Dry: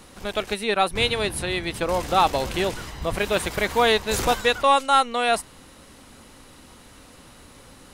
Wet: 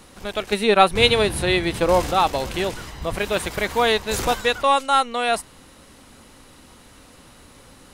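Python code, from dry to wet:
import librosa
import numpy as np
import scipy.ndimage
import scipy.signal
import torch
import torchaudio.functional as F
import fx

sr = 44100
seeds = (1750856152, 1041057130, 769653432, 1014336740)

y = fx.hpss(x, sr, part='harmonic', gain_db=8, at=(0.52, 2.11))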